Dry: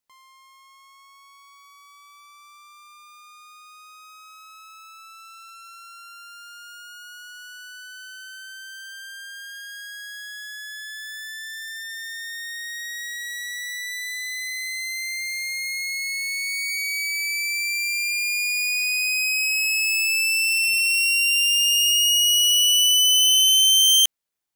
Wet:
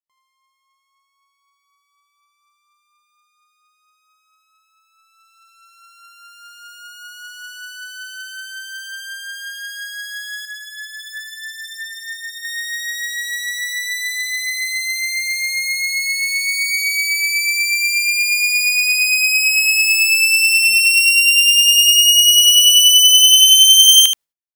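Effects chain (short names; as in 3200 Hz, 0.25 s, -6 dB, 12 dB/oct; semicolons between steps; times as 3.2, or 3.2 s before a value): gate -42 dBFS, range -24 dB; echo 77 ms -8 dB; 10.45–12.45 cascading flanger falling 1.5 Hz; gain +7 dB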